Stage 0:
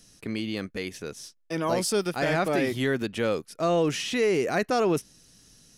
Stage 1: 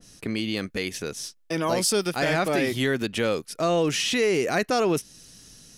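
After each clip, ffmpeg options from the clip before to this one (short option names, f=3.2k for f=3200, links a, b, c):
-filter_complex "[0:a]asplit=2[a][b];[b]acompressor=threshold=-34dB:ratio=6,volume=2dB[c];[a][c]amix=inputs=2:normalize=0,adynamicequalizer=threshold=0.0158:dfrequency=2000:dqfactor=0.7:tfrequency=2000:tqfactor=0.7:attack=5:release=100:ratio=0.375:range=2:mode=boostabove:tftype=highshelf,volume=-1.5dB"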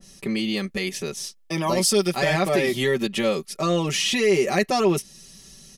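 -af "bandreject=f=1.5k:w=6.6,aecho=1:1:5.2:0.87"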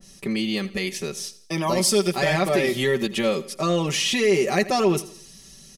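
-af "aecho=1:1:83|166|249|332:0.133|0.0573|0.0247|0.0106"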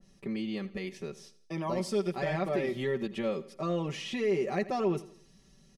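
-af "lowpass=f=1.4k:p=1,volume=-8.5dB"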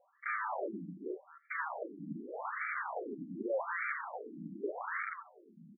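-filter_complex "[0:a]asplit=2[a][b];[b]adelay=260,highpass=300,lowpass=3.4k,asoftclip=type=hard:threshold=-28dB,volume=-9dB[c];[a][c]amix=inputs=2:normalize=0,aeval=exprs='(mod(56.2*val(0)+1,2)-1)/56.2':c=same,afftfilt=real='re*between(b*sr/1024,220*pow(1700/220,0.5+0.5*sin(2*PI*0.84*pts/sr))/1.41,220*pow(1700/220,0.5+0.5*sin(2*PI*0.84*pts/sr))*1.41)':imag='im*between(b*sr/1024,220*pow(1700/220,0.5+0.5*sin(2*PI*0.84*pts/sr))/1.41,220*pow(1700/220,0.5+0.5*sin(2*PI*0.84*pts/sr))*1.41)':win_size=1024:overlap=0.75,volume=9.5dB"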